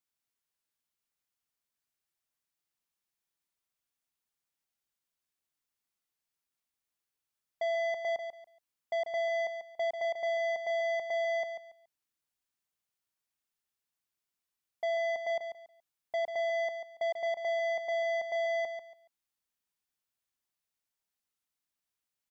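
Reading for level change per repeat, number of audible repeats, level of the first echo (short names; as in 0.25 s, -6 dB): -12.5 dB, 3, -8.0 dB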